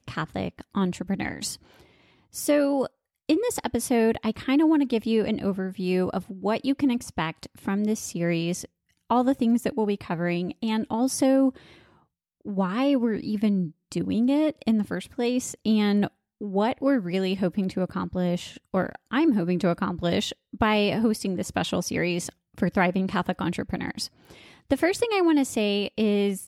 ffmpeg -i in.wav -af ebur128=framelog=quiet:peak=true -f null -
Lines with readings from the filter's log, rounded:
Integrated loudness:
  I:         -25.6 LUFS
  Threshold: -36.0 LUFS
Loudness range:
  LRA:         2.7 LU
  Threshold: -46.0 LUFS
  LRA low:   -27.4 LUFS
  LRA high:  -24.7 LUFS
True peak:
  Peak:       -7.7 dBFS